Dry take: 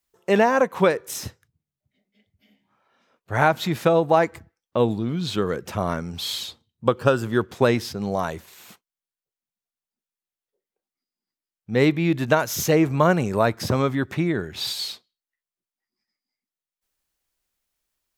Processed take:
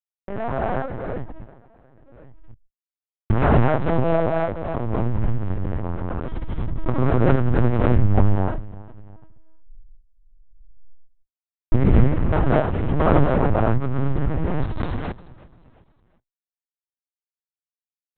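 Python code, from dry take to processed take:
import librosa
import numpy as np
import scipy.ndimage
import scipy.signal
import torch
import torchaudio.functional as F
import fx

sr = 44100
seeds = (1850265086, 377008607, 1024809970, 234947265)

y = fx.delta_hold(x, sr, step_db=-18.5)
y = fx.recorder_agc(y, sr, target_db=-11.0, rise_db_per_s=7.5, max_gain_db=30)
y = scipy.signal.sosfilt(scipy.signal.butter(2, 1300.0, 'lowpass', fs=sr, output='sos'), y)
y = fx.low_shelf_res(y, sr, hz=150.0, db=9.0, q=3.0)
y = fx.notch(y, sr, hz=430.0, q=12.0)
y = fx.auto_swell(y, sr, attack_ms=187.0)
y = fx.clip_asym(y, sr, top_db=-18.5, bottom_db=-1.0)
y = fx.echo_feedback(y, sr, ms=357, feedback_pct=43, wet_db=-20.0)
y = fx.rev_gated(y, sr, seeds[0], gate_ms=290, shape='rising', drr_db=-4.0)
y = fx.lpc_vocoder(y, sr, seeds[1], excitation='pitch_kept', order=8)
y = fx.pre_swell(y, sr, db_per_s=26.0)
y = F.gain(torch.from_numpy(y), -5.5).numpy()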